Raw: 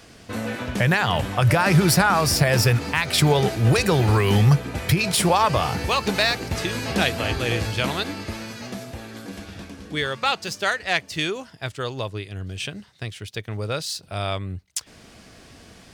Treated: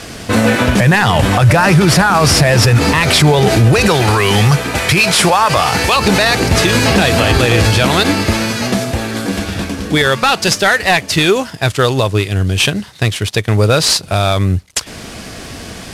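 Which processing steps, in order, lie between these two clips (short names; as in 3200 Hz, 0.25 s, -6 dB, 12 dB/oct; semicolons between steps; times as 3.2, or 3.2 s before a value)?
CVSD 64 kbps; 3.88–5.96 low shelf 460 Hz -10.5 dB; maximiser +19 dB; gain -1 dB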